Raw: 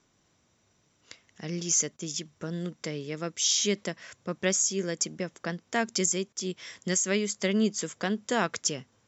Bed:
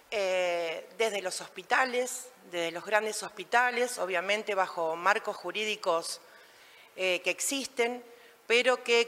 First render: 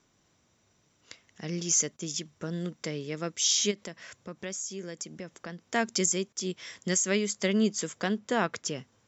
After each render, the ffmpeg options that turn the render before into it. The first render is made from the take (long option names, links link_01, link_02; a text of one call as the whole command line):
ffmpeg -i in.wav -filter_complex "[0:a]asplit=3[link_01][link_02][link_03];[link_01]afade=type=out:start_time=3.7:duration=0.02[link_04];[link_02]acompressor=threshold=-41dB:ratio=2:attack=3.2:release=140:knee=1:detection=peak,afade=type=in:start_time=3.7:duration=0.02,afade=type=out:start_time=5.67:duration=0.02[link_05];[link_03]afade=type=in:start_time=5.67:duration=0.02[link_06];[link_04][link_05][link_06]amix=inputs=3:normalize=0,asettb=1/sr,asplit=3[link_07][link_08][link_09];[link_07]atrim=end=8.184[link_10];[link_08]atrim=start=8.18:end=8.76,asetpts=PTS-STARTPTS,afade=type=in:duration=0.004:curve=qsin,afade=type=out:start_time=0.576:duration=0.004:curve=qsin,highshelf=frequency=5000:gain=-10.5[link_11];[link_09]atrim=start=8.756[link_12];[link_10][link_11]acrossfade=duration=0.004:curve1=hsin:curve2=qsin[link_13];[link_13][link_12]acrossfade=duration=0.004:curve1=qsin:curve2=hsin" out.wav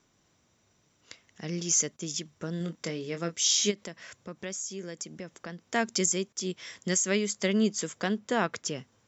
ffmpeg -i in.wav -filter_complex "[0:a]asettb=1/sr,asplit=3[link_01][link_02][link_03];[link_01]atrim=end=2.584[link_04];[link_02]atrim=start=2.58:end=3.7,asetpts=PTS-STARTPTS,afade=type=in:duration=0.004:curve=qsin,afade=type=out:start_time=1.116:duration=0.004:curve=qsin,asplit=2[link_05][link_06];[link_06]adelay=24,volume=-8dB[link_07];[link_05][link_07]amix=inputs=2:normalize=0,atrim=end_sample=49392[link_08];[link_03]atrim=start=3.696[link_09];[link_04][link_08]acrossfade=duration=0.004:curve1=hsin:curve2=qsin[link_10];[link_10][link_09]acrossfade=duration=0.004:curve1=qsin:curve2=hsin" out.wav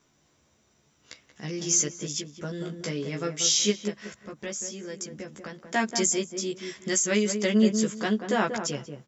ffmpeg -i in.wav -filter_complex "[0:a]asplit=2[link_01][link_02];[link_02]adelay=14,volume=-2dB[link_03];[link_01][link_03]amix=inputs=2:normalize=0,asplit=2[link_04][link_05];[link_05]adelay=186,lowpass=frequency=910:poles=1,volume=-6dB,asplit=2[link_06][link_07];[link_07]adelay=186,lowpass=frequency=910:poles=1,volume=0.24,asplit=2[link_08][link_09];[link_09]adelay=186,lowpass=frequency=910:poles=1,volume=0.24[link_10];[link_04][link_06][link_08][link_10]amix=inputs=4:normalize=0" out.wav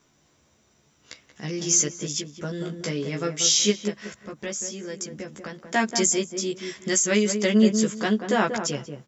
ffmpeg -i in.wav -af "volume=3dB" out.wav